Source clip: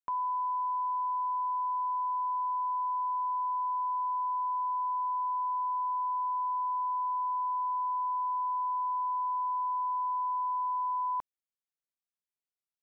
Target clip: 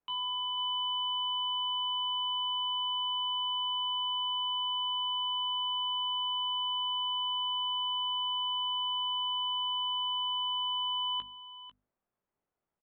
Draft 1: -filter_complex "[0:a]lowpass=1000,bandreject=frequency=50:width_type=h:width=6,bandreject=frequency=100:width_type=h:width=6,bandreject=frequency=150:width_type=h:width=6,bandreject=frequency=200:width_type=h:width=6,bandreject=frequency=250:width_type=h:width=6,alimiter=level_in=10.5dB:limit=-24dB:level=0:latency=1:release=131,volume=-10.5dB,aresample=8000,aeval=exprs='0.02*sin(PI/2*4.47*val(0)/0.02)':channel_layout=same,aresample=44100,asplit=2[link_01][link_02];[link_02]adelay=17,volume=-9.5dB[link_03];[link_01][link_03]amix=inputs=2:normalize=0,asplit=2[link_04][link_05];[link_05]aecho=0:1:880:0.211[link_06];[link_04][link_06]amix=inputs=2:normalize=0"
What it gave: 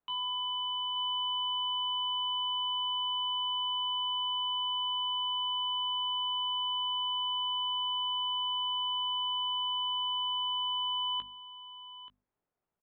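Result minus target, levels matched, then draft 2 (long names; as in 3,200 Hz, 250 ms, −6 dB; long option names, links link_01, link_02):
echo 385 ms late
-filter_complex "[0:a]lowpass=1000,bandreject=frequency=50:width_type=h:width=6,bandreject=frequency=100:width_type=h:width=6,bandreject=frequency=150:width_type=h:width=6,bandreject=frequency=200:width_type=h:width=6,bandreject=frequency=250:width_type=h:width=6,alimiter=level_in=10.5dB:limit=-24dB:level=0:latency=1:release=131,volume=-10.5dB,aresample=8000,aeval=exprs='0.02*sin(PI/2*4.47*val(0)/0.02)':channel_layout=same,aresample=44100,asplit=2[link_01][link_02];[link_02]adelay=17,volume=-9.5dB[link_03];[link_01][link_03]amix=inputs=2:normalize=0,asplit=2[link_04][link_05];[link_05]aecho=0:1:495:0.211[link_06];[link_04][link_06]amix=inputs=2:normalize=0"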